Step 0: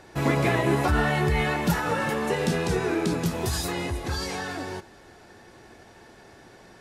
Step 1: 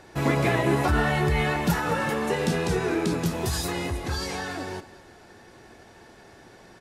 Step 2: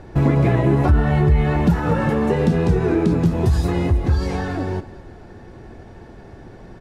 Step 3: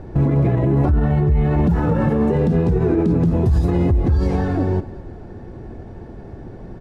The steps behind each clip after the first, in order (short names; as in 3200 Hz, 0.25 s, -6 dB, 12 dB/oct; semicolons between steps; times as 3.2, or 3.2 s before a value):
echo 0.216 s -17.5 dB
tilt -3.5 dB/oct; compressor 2.5:1, threshold -18 dBFS, peak gain reduction 8 dB; gain +4 dB
tilt shelf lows +6 dB; limiter -9.5 dBFS, peak gain reduction 9.5 dB